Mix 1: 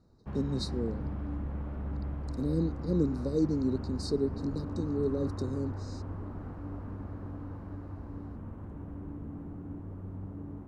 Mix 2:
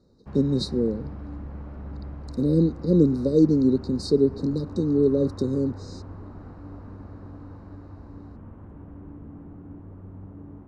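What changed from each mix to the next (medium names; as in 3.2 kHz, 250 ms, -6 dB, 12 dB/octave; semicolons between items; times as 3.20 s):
speech +10.5 dB; master: add tone controls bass -1 dB, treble -7 dB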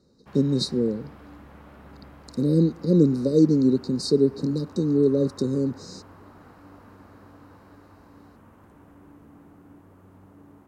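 background: add tilt EQ +4 dB/octave; master: add tone controls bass +1 dB, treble +7 dB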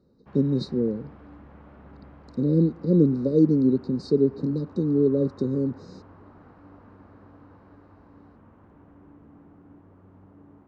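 master: add tape spacing loss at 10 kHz 28 dB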